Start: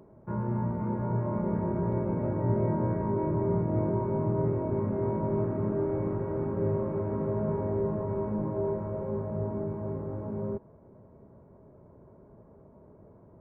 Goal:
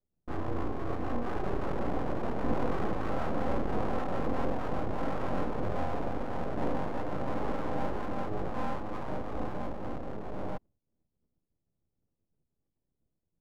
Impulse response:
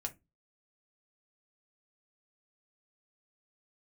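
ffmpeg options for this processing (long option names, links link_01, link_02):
-af "agate=range=-33dB:threshold=-46dB:ratio=3:detection=peak,anlmdn=1.58,aeval=exprs='abs(val(0))':channel_layout=same"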